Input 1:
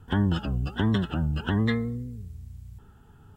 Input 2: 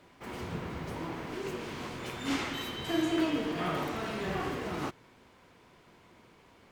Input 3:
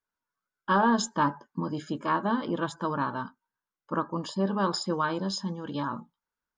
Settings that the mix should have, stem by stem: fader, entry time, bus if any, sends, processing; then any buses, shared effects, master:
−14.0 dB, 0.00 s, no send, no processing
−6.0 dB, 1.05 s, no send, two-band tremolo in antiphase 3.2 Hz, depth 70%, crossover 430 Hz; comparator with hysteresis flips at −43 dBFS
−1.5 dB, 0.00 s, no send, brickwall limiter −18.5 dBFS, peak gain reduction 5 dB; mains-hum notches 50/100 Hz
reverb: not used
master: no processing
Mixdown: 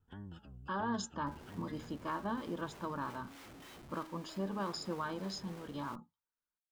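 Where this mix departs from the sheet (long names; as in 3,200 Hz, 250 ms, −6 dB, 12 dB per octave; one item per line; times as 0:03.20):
stem 1 −14.0 dB → −25.0 dB
stem 2 −6.0 dB → −14.0 dB
stem 3 −1.5 dB → −10.0 dB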